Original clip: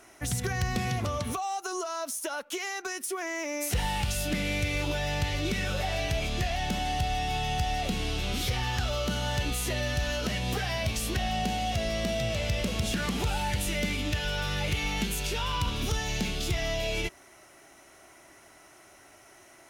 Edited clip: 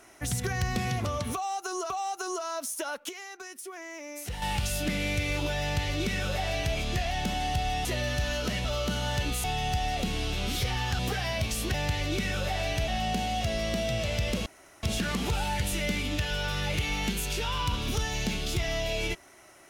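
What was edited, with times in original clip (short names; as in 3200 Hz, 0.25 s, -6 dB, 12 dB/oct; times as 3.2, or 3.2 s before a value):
1.35–1.9 loop, 2 plays
2.54–3.87 gain -8 dB
5.07–6.21 copy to 11.19
7.3–8.85 swap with 9.64–10.44
12.77 insert room tone 0.37 s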